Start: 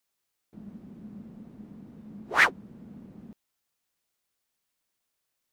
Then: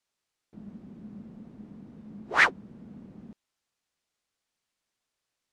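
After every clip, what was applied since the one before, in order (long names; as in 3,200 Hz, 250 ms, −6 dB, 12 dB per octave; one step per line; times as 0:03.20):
low-pass filter 7,800 Hz 12 dB per octave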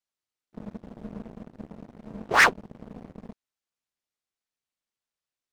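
leveller curve on the samples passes 3
amplitude modulation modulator 250 Hz, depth 55%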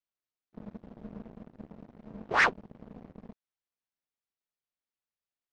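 high-frequency loss of the air 110 metres
level −5 dB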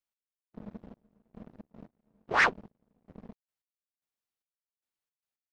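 gate pattern "x...xxx...xx." 112 BPM −24 dB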